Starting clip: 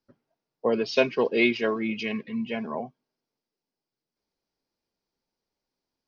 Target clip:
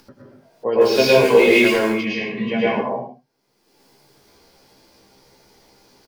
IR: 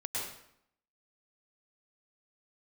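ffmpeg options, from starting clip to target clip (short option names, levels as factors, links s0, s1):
-filter_complex "[0:a]asettb=1/sr,asplit=3[s0][s1][s2];[s0]atrim=end=0.814[s3];[s1]atrim=start=0.81:end=1.79,asetpts=PTS-STARTPTS,afade=t=in:d=0.004:c=qsin,afade=t=out:st=0.976:d=0.004:c=qsin,aeval=exprs='val(0)+0.5*0.0299*sgn(val(0))':c=same[s4];[s2]atrim=start=1.786[s5];[s3][s4]acrossfade=d=0.004:c1=hsin:c2=qsin[s6];[s6][s5]acrossfade=d=0.004:c1=qsin:c2=hsin[s7];[1:a]atrim=start_sample=2205,afade=t=out:st=0.33:d=0.01,atrim=end_sample=14994,asetrate=43659,aresample=44100[s8];[s7][s8]afir=irnorm=-1:irlink=0,asettb=1/sr,asplit=3[s9][s10][s11];[s9]atrim=end=2.374[s12];[s10]atrim=start=2.37:end=2.81,asetpts=PTS-STARTPTS,afade=t=in:d=0.004:c=qsin,afade=t=out:st=0.436:d=0.004:c=qsin,acontrast=36[s13];[s11]atrim=start=2.806[s14];[s12][s13]acrossfade=d=0.004:c1=hsin:c2=qsin[s15];[s15][s14]acrossfade=d=0.004:c1=qsin:c2=hsin,aecho=1:1:15|78:0.668|0.282,acompressor=mode=upward:threshold=0.0158:ratio=2.5,volume=1.41"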